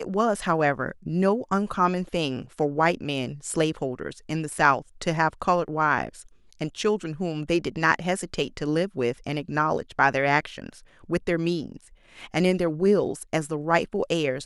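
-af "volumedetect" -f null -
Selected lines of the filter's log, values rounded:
mean_volume: -25.5 dB
max_volume: -3.9 dB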